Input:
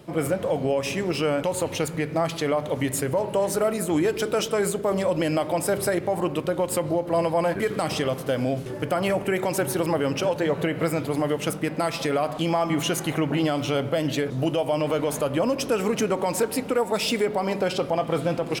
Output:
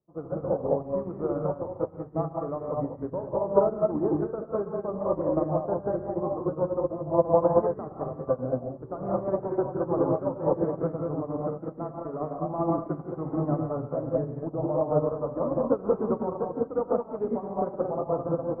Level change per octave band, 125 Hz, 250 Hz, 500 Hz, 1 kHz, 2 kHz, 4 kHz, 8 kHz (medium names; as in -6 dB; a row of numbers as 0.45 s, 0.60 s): -4.0 dB, -4.0 dB, -2.5 dB, -4.0 dB, under -20 dB, under -40 dB, under -40 dB